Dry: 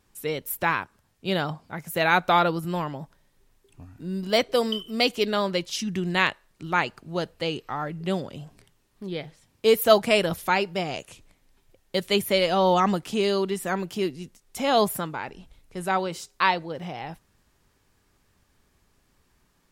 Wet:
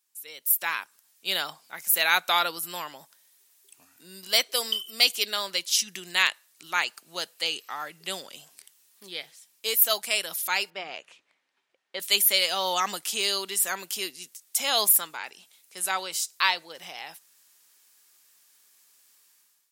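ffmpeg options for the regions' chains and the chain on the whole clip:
-filter_complex "[0:a]asettb=1/sr,asplit=3[a][b][c];[a]atrim=end=10.704[d];[b]atrim=start=10.7:end=12,asetpts=PTS-STARTPTS,afade=t=in:d=0.004:c=qsin,afade=t=out:st=1.296:d=0.004:c=qsin,lowpass=2k,lowshelf=f=74:g=-11.5,bandreject=f=60:t=h:w=6,bandreject=f=120:t=h:w=6,bandreject=f=180:t=h:w=6[e];[c]atrim=start=11.996[f];[d][e]acrossfade=d=0.004:c1=hsin:c2=qsin[g];[g][f]acrossfade=d=0.004:c1=qsin:c2=hsin,highpass=160,aderivative,dynaudnorm=f=200:g=5:m=15dB,volume=-2.5dB"

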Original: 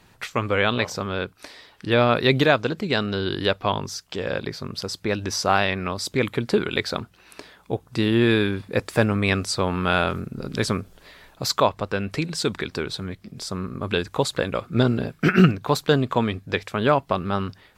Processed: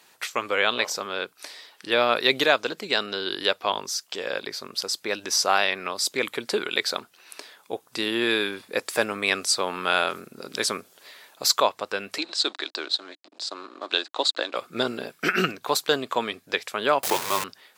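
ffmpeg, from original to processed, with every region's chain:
-filter_complex "[0:a]asettb=1/sr,asplit=3[a][b][c];[a]atrim=end=12.184[d];[b]atrim=start=12.18:end=14.56,asetpts=PTS-STARTPTS,afade=t=in:d=0.004:c=qsin,afade=t=out:st=2.376:d=0.004:c=qsin,aeval=exprs='sgn(val(0))*max(abs(val(0))-0.0075,0)':c=same,highpass=f=300:w=0.5412,highpass=f=300:w=1.3066,equalizer=f=300:t=q:w=4:g=6,equalizer=f=450:t=q:w=4:g=-7,equalizer=f=660:t=q:w=4:g=4,equalizer=f=2.2k:t=q:w=4:g=-4,equalizer=f=4k:t=q:w=4:g=8,equalizer=f=5.9k:t=q:w=4:g=-6,lowpass=f=6.8k:w=0.5412,lowpass=f=6.8k:w=1.3066[e];[c]atrim=start=14.556[f];[d][e]acrossfade=d=0.004:c1=hsin:c2=qsin[g];[g][f]acrossfade=d=0.004:c1=qsin:c2=hsin,asettb=1/sr,asplit=3[h][i][j];[h]atrim=end=17.034[k];[i]atrim=start=17.03:end=17.44,asetpts=PTS-STARTPTS,afade=t=in:d=0.004:c=qsin,afade=t=out:st=0.406:d=0.004:c=qsin,aeval=exprs='val(0)+0.5*0.0944*sgn(val(0))':c=same,afreqshift=-210[l];[j]atrim=start=17.436[m];[k][l]acrossfade=d=0.004:c1=hsin:c2=qsin[n];[n][m]acrossfade=d=0.004:c1=qsin:c2=hsin,highpass=400,highshelf=f=3.7k:g=9.5,volume=-2dB"

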